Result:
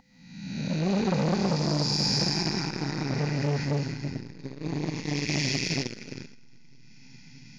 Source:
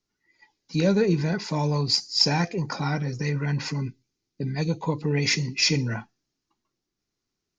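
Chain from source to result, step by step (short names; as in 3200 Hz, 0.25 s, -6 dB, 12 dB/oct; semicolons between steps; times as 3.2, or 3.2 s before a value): time blur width 0.61 s; bell 1100 Hz -12.5 dB 0.45 oct; whine 510 Hz -42 dBFS; elliptic band-stop 260–800 Hz, stop band 40 dB; bell 110 Hz -10.5 dB 0.42 oct; echo with dull and thin repeats by turns 0.313 s, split 1700 Hz, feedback 73%, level -12 dB; on a send at -4 dB: reverb RT60 2.3 s, pre-delay 85 ms; on the sum: core saturation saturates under 730 Hz; gain +8 dB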